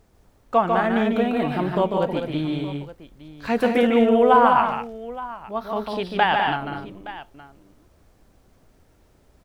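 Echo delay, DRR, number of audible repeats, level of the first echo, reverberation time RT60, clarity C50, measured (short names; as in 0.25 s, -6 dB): 0.147 s, none, 3, -4.5 dB, none, none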